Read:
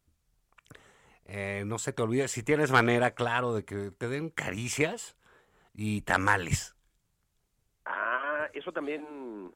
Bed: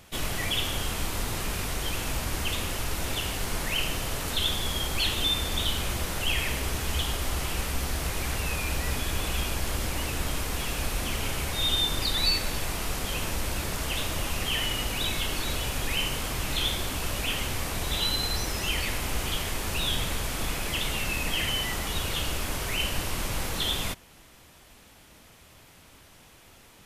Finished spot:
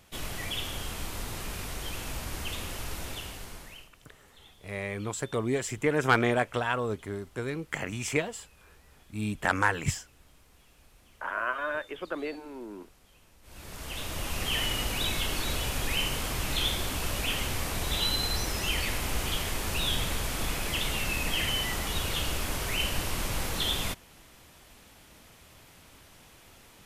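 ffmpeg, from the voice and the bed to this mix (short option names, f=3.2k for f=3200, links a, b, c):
-filter_complex "[0:a]adelay=3350,volume=-0.5dB[a];[1:a]volume=22.5dB,afade=t=out:st=2.93:d=0.97:silence=0.0668344,afade=t=in:st=13.42:d=1.15:silence=0.0375837[b];[a][b]amix=inputs=2:normalize=0"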